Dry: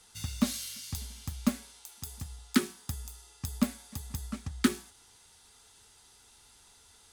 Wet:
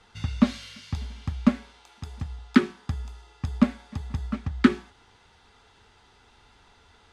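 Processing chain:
low-pass filter 2,500 Hz 12 dB per octave
level +8 dB

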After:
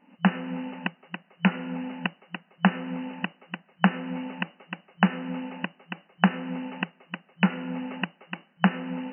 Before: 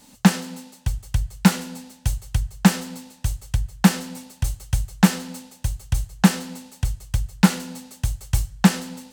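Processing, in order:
camcorder AGC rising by 43 dB per second
brick-wall band-pass 170–3,000 Hz
level −7 dB

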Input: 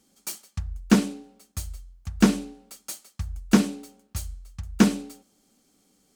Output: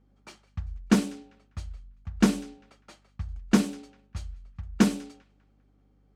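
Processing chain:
mains hum 50 Hz, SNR 34 dB
delay with a high-pass on its return 199 ms, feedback 42%, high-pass 1,600 Hz, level −22 dB
low-pass that shuts in the quiet parts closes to 1,600 Hz, open at −18.5 dBFS
level −3 dB

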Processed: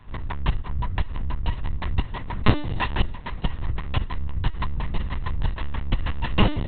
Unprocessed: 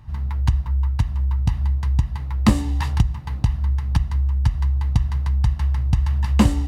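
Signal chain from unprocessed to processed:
spectral tilt +2 dB per octave
linear-prediction vocoder at 8 kHz pitch kept
level +3 dB

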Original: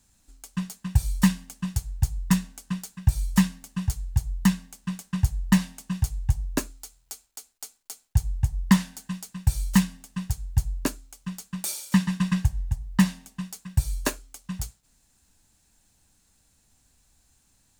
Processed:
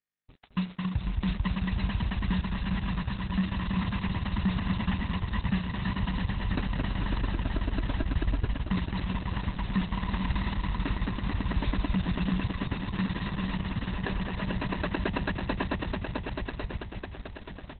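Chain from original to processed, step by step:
notch filter 1,500 Hz, Q 13
echo that builds up and dies away 110 ms, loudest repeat 8, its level −10 dB
0:08.41–0:10.70: noise gate −30 dBFS, range −7 dB
speech leveller within 3 dB 0.5 s
high-shelf EQ 9,200 Hz −12 dB
centre clipping without the shift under −44.5 dBFS
brickwall limiter −17.5 dBFS, peak gain reduction 11 dB
low-shelf EQ 90 Hz −5.5 dB
single-tap delay 217 ms −3.5 dB
Opus 6 kbit/s 48,000 Hz

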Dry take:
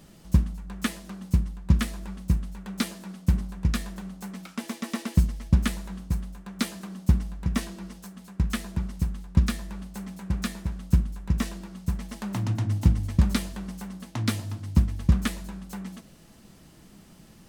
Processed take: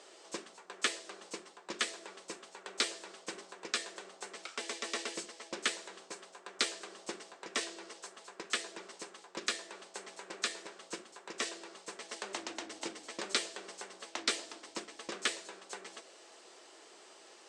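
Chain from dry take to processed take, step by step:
Chebyshev band-pass filter 380–8,300 Hz, order 4
dynamic equaliser 920 Hz, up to −8 dB, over −54 dBFS, Q 1.1
level +3 dB
Opus 64 kbit/s 48,000 Hz

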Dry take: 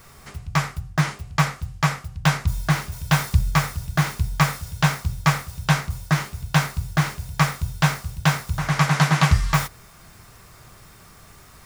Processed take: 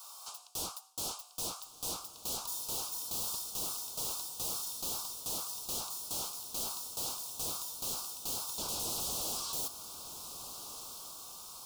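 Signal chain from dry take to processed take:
high-pass filter 910 Hz 24 dB per octave
brickwall limiter −16.5 dBFS, peak gain reduction 8 dB
wave folding −34 dBFS
Butterworth band-reject 1,900 Hz, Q 0.73
feedback delay with all-pass diffusion 1,424 ms, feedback 44%, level −11 dB
level +3.5 dB

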